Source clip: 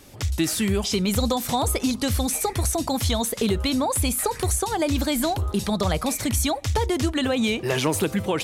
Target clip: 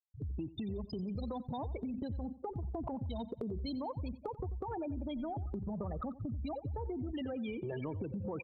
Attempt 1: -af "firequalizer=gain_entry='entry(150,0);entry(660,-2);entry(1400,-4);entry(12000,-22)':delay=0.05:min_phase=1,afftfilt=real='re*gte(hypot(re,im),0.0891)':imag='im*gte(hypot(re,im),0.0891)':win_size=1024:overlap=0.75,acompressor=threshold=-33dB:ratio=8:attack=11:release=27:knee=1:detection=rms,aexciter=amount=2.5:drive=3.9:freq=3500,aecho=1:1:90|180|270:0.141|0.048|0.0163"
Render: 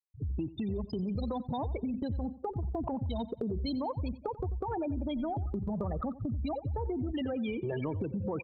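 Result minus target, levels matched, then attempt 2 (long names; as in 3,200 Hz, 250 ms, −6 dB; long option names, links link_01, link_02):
downward compressor: peak gain reduction −5 dB
-af "firequalizer=gain_entry='entry(150,0);entry(660,-2);entry(1400,-4);entry(12000,-22)':delay=0.05:min_phase=1,afftfilt=real='re*gte(hypot(re,im),0.0891)':imag='im*gte(hypot(re,im),0.0891)':win_size=1024:overlap=0.75,acompressor=threshold=-39dB:ratio=8:attack=11:release=27:knee=1:detection=rms,aexciter=amount=2.5:drive=3.9:freq=3500,aecho=1:1:90|180|270:0.141|0.048|0.0163"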